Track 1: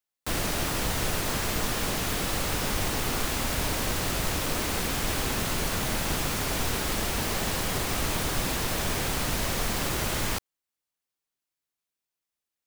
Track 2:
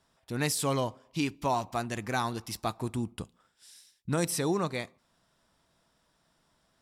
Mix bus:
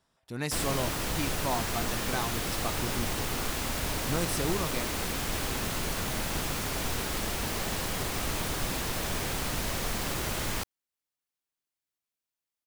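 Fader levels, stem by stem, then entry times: -3.5, -3.5 dB; 0.25, 0.00 s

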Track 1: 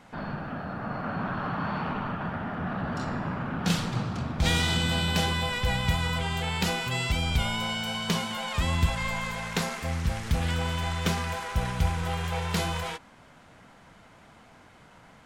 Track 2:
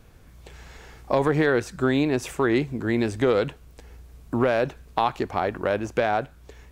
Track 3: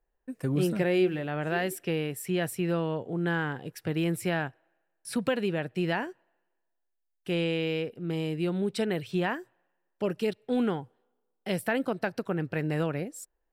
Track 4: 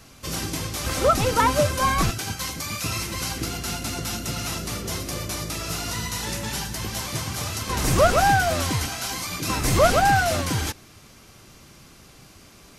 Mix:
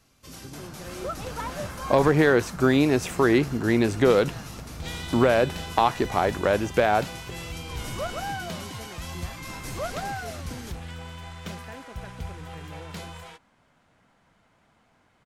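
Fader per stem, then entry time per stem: -10.5, +2.0, -16.5, -14.5 dB; 0.40, 0.80, 0.00, 0.00 s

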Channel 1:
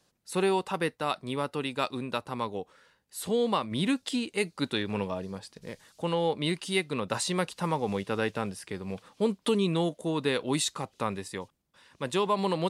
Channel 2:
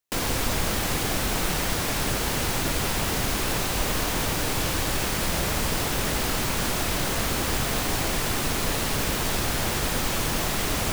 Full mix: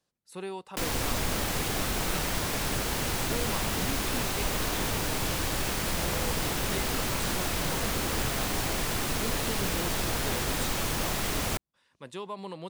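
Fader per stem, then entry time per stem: -11.5, -4.0 dB; 0.00, 0.65 s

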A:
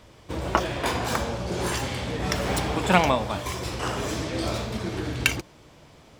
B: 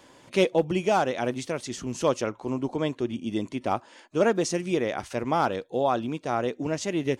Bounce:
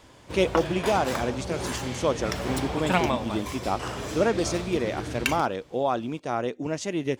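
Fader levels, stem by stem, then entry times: -4.5, -1.0 dB; 0.00, 0.00 s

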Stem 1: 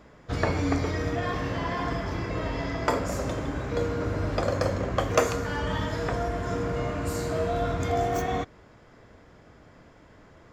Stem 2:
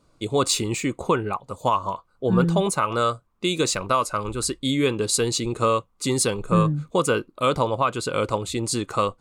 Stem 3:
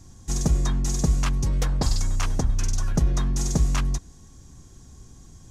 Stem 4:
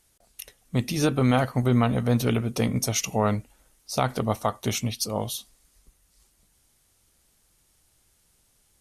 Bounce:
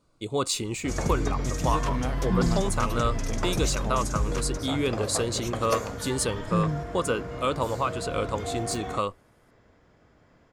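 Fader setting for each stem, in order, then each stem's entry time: -7.0, -5.5, -7.0, -11.0 dB; 0.55, 0.00, 0.60, 0.70 s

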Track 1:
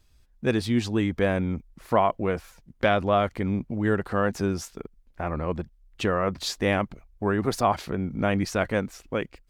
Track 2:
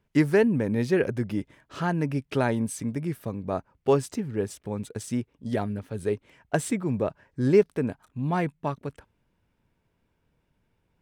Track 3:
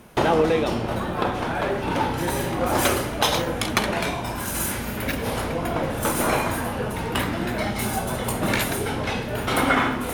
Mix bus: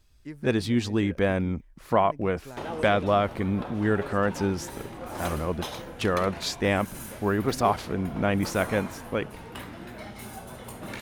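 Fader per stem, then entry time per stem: -0.5, -19.0, -15.0 dB; 0.00, 0.10, 2.40 s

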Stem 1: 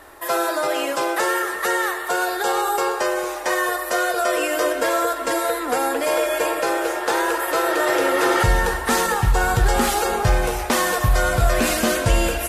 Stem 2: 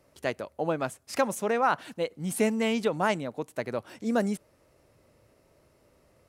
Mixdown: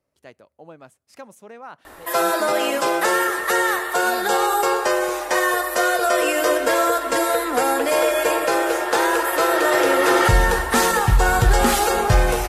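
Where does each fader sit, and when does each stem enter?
+2.0, -14.0 dB; 1.85, 0.00 s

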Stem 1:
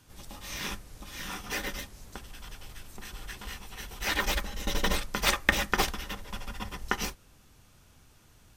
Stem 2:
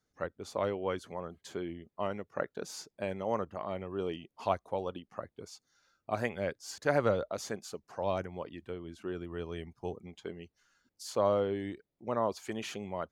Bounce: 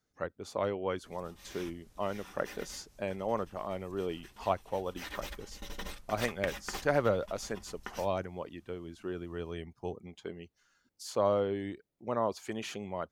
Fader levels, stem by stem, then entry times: -14.0, 0.0 dB; 0.95, 0.00 s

